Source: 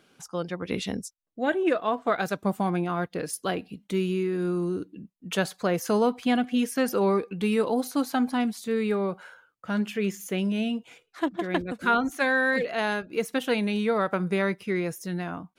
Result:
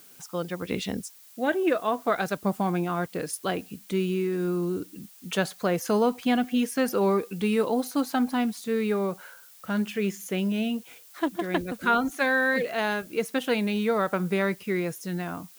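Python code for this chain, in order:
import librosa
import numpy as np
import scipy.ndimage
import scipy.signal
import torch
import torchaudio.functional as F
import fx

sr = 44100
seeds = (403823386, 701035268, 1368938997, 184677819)

y = fx.dmg_noise_colour(x, sr, seeds[0], colour='blue', level_db=-52.0)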